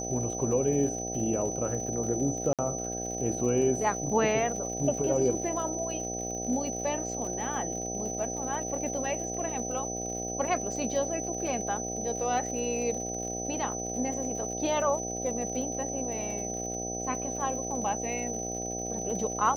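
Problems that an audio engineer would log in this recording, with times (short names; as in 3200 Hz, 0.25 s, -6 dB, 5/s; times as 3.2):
buzz 60 Hz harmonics 13 -37 dBFS
crackle 82/s -38 dBFS
tone 6000 Hz -35 dBFS
2.53–2.59 gap 57 ms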